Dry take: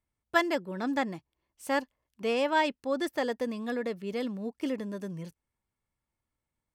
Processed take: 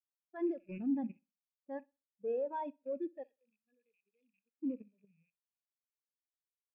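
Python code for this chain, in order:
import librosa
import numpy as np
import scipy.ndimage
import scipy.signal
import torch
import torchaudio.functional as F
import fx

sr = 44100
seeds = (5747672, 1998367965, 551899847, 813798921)

y = fx.rattle_buzz(x, sr, strikes_db=-52.0, level_db=-24.0)
y = fx.env_lowpass(y, sr, base_hz=650.0, full_db=-25.0)
y = fx.pre_emphasis(y, sr, coefficient=0.9, at=(3.23, 4.54))
y = fx.level_steps(y, sr, step_db=17)
y = np.clip(y, -10.0 ** (-34.5 / 20.0), 10.0 ** (-34.5 / 20.0))
y = fx.echo_feedback(y, sr, ms=62, feedback_pct=55, wet_db=-12)
y = fx.spectral_expand(y, sr, expansion=2.5)
y = F.gain(torch.from_numpy(y), 5.5).numpy()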